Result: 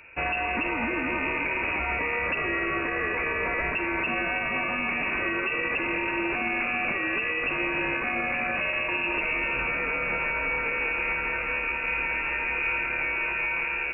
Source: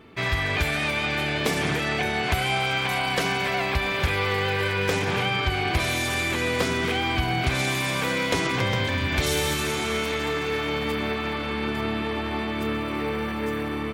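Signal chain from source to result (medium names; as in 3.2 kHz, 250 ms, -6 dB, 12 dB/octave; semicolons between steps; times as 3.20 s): frequency inversion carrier 2.7 kHz; peak limiter -19 dBFS, peak gain reduction 9 dB; bit-crushed delay 330 ms, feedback 55%, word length 10-bit, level -15 dB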